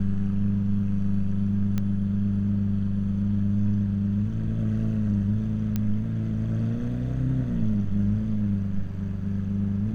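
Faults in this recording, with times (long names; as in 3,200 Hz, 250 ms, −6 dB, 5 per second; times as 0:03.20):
0:01.78: click −15 dBFS
0:05.76: click −14 dBFS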